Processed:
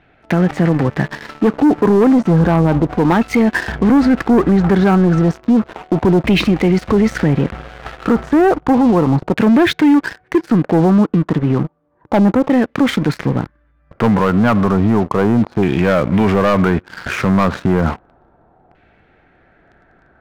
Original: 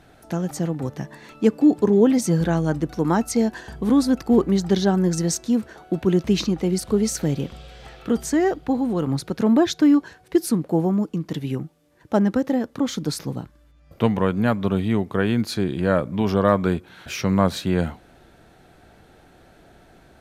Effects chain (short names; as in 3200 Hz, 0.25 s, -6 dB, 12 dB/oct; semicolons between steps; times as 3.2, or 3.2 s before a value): LFO low-pass saw down 0.32 Hz 890–2500 Hz; sample leveller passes 3; limiter -10 dBFS, peak gain reduction 9 dB; gain +3.5 dB